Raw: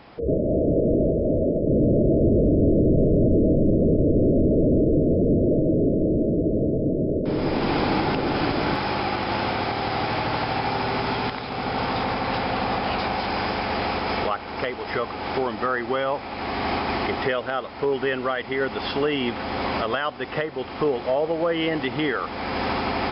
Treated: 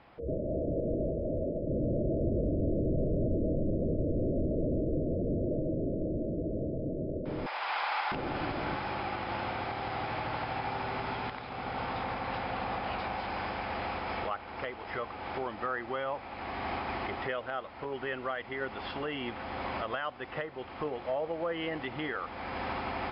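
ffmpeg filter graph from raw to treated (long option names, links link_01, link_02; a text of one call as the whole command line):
ffmpeg -i in.wav -filter_complex "[0:a]asettb=1/sr,asplit=3[link_01][link_02][link_03];[link_01]atrim=end=7.464[link_04];[link_02]atrim=start=7.46:end=8.12,asetpts=PTS-STARTPTS,afade=type=in:duration=0.004:curve=qsin,afade=type=out:start_time=0.656:duration=0.004:curve=qsin,highpass=frequency=820:width=0.5412,highpass=frequency=820:width=1.3066,acontrast=45[link_05];[link_03]atrim=start=8.116[link_06];[link_04][link_05]acrossfade=duration=0.004:curve1=hsin:curve2=qsin[link_07];[link_07][link_06]acrossfade=duration=0.004:curve1=qsin:curve2=hsin,lowpass=3100,equalizer=frequency=240:width_type=o:width=1.7:gain=-4.5,bandreject=frequency=430:width=12,volume=-8.5dB" out.wav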